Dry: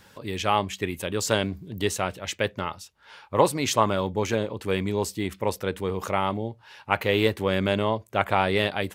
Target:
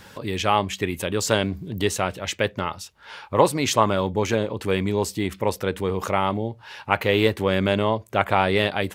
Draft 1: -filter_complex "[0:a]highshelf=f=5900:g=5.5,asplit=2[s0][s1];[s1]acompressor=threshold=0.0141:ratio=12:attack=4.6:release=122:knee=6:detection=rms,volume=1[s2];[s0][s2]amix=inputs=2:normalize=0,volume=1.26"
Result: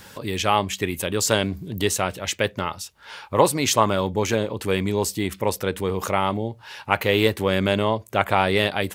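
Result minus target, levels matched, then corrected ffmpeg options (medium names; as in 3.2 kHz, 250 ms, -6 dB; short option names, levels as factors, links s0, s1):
8 kHz band +4.0 dB
-filter_complex "[0:a]highshelf=f=5900:g=-2.5,asplit=2[s0][s1];[s1]acompressor=threshold=0.0141:ratio=12:attack=4.6:release=122:knee=6:detection=rms,volume=1[s2];[s0][s2]amix=inputs=2:normalize=0,volume=1.26"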